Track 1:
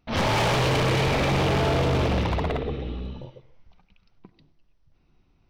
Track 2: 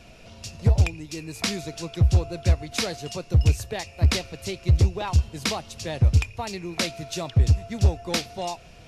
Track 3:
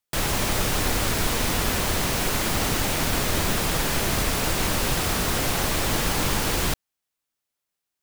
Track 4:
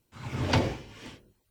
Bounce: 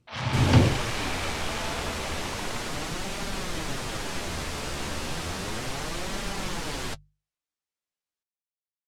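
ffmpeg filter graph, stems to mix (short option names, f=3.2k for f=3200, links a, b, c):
-filter_complex "[0:a]highpass=880,volume=-6dB[a];[2:a]flanger=delay=5:depth=9:regen=31:speed=0.33:shape=sinusoidal,adelay=200,volume=-4dB[b];[3:a]equalizer=f=120:w=0.36:g=11.5,volume=-1.5dB[c];[a][b][c]amix=inputs=3:normalize=0,lowpass=8.2k,bandreject=f=50:t=h:w=6,bandreject=f=100:t=h:w=6,bandreject=f=150:t=h:w=6"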